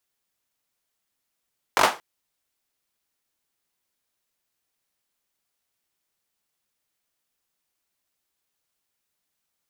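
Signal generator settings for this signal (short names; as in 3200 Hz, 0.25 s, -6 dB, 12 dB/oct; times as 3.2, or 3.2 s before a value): hand clap length 0.23 s, apart 21 ms, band 830 Hz, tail 0.27 s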